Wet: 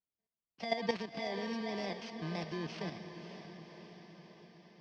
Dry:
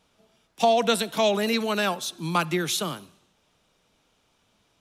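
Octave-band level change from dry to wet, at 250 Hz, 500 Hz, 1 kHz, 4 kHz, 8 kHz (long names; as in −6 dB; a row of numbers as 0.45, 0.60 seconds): −11.0, −14.5, −16.5, −16.5, −26.0 decibels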